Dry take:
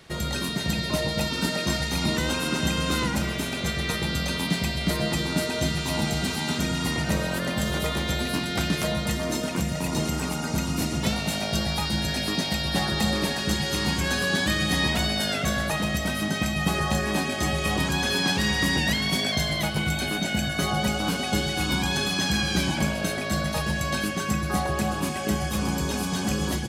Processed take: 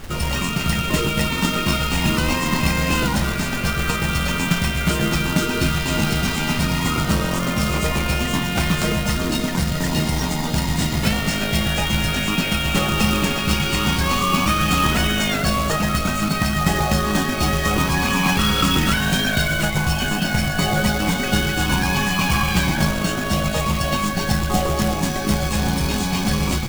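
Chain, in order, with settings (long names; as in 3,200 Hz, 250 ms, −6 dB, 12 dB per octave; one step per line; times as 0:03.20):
formants moved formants −6 semitones
background noise brown −38 dBFS
log-companded quantiser 4 bits
level +5.5 dB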